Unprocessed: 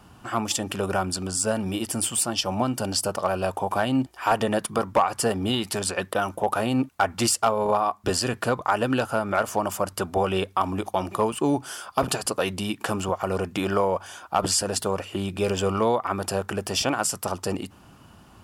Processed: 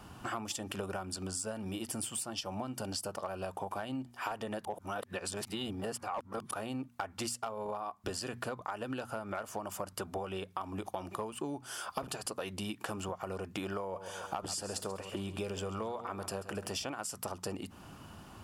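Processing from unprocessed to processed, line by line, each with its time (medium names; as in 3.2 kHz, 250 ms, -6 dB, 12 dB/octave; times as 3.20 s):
4.65–6.51 s: reverse
13.80–16.70 s: feedback delay 135 ms, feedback 43%, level -13.5 dB
whole clip: hum notches 60/120/180/240 Hz; compression 10:1, threshold -35 dBFS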